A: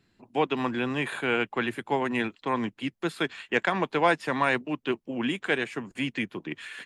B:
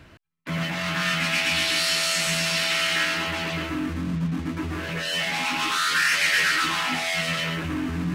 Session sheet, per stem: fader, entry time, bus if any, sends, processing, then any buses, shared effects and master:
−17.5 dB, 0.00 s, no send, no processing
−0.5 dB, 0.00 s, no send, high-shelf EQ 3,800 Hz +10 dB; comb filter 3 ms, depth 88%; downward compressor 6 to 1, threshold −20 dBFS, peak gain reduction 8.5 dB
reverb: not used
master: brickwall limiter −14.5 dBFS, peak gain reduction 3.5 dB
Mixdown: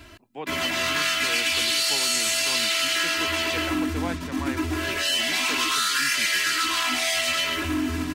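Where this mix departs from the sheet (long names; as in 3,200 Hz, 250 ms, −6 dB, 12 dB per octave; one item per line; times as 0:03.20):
stem A −17.5 dB → −10.5 dB
master: missing brickwall limiter −14.5 dBFS, peak gain reduction 3.5 dB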